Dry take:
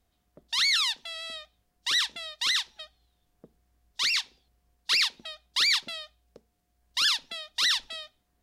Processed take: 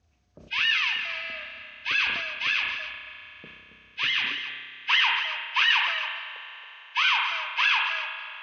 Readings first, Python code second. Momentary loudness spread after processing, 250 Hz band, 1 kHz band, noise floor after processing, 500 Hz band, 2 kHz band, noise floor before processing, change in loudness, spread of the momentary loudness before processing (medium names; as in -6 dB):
18 LU, no reading, +10.0 dB, -55 dBFS, +2.5 dB, +8.0 dB, -74 dBFS, +1.5 dB, 17 LU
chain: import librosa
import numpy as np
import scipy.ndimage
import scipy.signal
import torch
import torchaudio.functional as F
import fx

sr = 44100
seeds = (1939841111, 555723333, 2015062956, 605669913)

p1 = fx.freq_compress(x, sr, knee_hz=1200.0, ratio=1.5)
p2 = p1 + fx.echo_single(p1, sr, ms=275, db=-11.5, dry=0)
p3 = fx.filter_sweep_highpass(p2, sr, from_hz=82.0, to_hz=930.0, start_s=3.99, end_s=4.67, q=4.8)
p4 = fx.rev_spring(p3, sr, rt60_s=3.8, pass_ms=(31,), chirp_ms=45, drr_db=7.0)
p5 = fx.sustainer(p4, sr, db_per_s=39.0)
y = p5 * librosa.db_to_amplitude(1.5)